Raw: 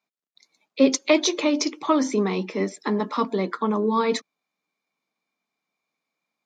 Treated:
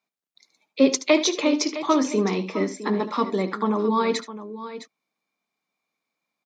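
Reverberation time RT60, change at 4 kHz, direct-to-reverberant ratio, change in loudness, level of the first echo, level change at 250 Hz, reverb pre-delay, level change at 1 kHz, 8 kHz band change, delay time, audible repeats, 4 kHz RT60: no reverb audible, +0.5 dB, no reverb audible, +0.5 dB, −13.5 dB, +0.5 dB, no reverb audible, +0.5 dB, +0.5 dB, 74 ms, 2, no reverb audible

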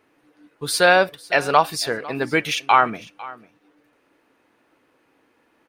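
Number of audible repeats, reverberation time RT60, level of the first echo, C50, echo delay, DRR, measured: 1, no reverb audible, −20.0 dB, no reverb audible, 501 ms, no reverb audible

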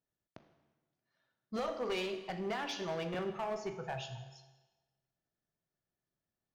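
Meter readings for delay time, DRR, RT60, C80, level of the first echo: no echo audible, 7.0 dB, 1.2 s, 11.0 dB, no echo audible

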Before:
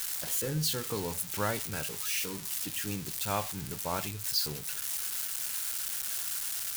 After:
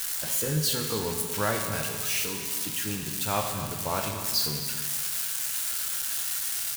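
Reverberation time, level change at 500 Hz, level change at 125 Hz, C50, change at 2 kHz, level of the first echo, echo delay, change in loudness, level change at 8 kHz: 1.6 s, +5.0 dB, +4.5 dB, 4.5 dB, +5.0 dB, −13.5 dB, 253 ms, +4.5 dB, +4.5 dB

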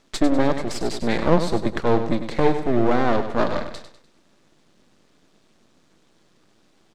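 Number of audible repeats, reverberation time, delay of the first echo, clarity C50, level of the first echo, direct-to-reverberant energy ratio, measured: 4, no reverb audible, 99 ms, no reverb audible, −9.5 dB, no reverb audible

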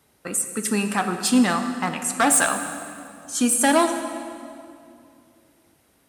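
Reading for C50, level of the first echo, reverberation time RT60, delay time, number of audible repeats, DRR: 7.5 dB, no echo audible, 2.5 s, no echo audible, no echo audible, 7.0 dB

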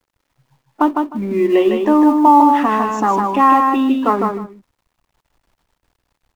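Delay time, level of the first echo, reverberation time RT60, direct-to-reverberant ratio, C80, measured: 155 ms, −4.0 dB, no reverb audible, no reverb audible, no reverb audible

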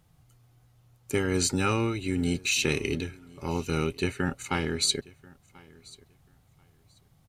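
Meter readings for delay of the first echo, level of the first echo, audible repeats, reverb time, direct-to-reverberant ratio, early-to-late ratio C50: 1,037 ms, −24.0 dB, 1, no reverb audible, no reverb audible, no reverb audible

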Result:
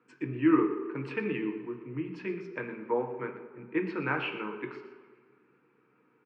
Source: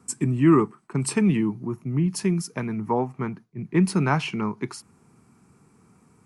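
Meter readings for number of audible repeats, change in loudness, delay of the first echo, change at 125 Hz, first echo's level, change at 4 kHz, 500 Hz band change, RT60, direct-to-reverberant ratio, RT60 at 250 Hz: 1, −8.0 dB, 119 ms, −17.0 dB, −13.5 dB, −9.5 dB, −5.0 dB, 1.7 s, 3.0 dB, 1.5 s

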